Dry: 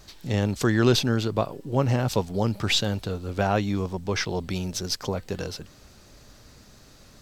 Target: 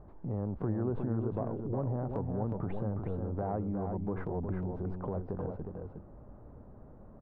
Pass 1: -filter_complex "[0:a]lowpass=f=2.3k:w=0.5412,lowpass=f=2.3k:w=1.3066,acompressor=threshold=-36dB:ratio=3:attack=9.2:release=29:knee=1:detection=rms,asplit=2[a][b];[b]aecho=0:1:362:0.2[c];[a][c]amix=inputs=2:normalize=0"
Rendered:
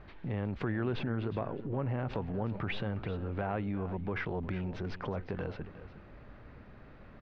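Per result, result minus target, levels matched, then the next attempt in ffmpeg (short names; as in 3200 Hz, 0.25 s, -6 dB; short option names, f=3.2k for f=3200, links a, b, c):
2000 Hz band +14.5 dB; echo-to-direct -8.5 dB
-filter_complex "[0:a]lowpass=f=980:w=0.5412,lowpass=f=980:w=1.3066,acompressor=threshold=-36dB:ratio=3:attack=9.2:release=29:knee=1:detection=rms,asplit=2[a][b];[b]aecho=0:1:362:0.2[c];[a][c]amix=inputs=2:normalize=0"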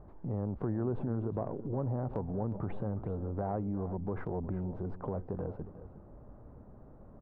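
echo-to-direct -8.5 dB
-filter_complex "[0:a]lowpass=f=980:w=0.5412,lowpass=f=980:w=1.3066,acompressor=threshold=-36dB:ratio=3:attack=9.2:release=29:knee=1:detection=rms,asplit=2[a][b];[b]aecho=0:1:362:0.531[c];[a][c]amix=inputs=2:normalize=0"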